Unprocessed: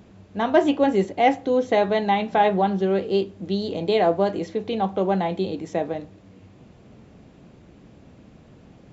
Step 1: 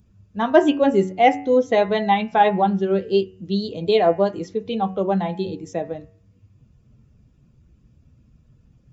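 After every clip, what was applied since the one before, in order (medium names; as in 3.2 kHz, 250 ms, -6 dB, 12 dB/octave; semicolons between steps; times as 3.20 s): expander on every frequency bin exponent 1.5; de-hum 93.37 Hz, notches 32; trim +5 dB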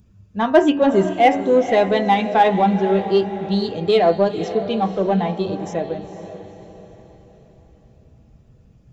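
in parallel at -7 dB: saturation -19.5 dBFS, distortion -7 dB; on the sum: echo that smears into a reverb 482 ms, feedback 45%, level -11.5 dB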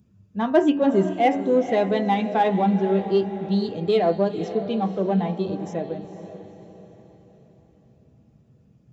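high-pass 170 Hz 12 dB/octave; bass shelf 270 Hz +12 dB; trim -7.5 dB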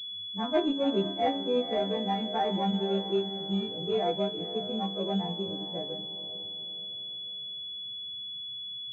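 partials quantised in pitch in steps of 2 st; level-controlled noise filter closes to 800 Hz, open at -15 dBFS; class-D stage that switches slowly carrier 3.4 kHz; trim -8 dB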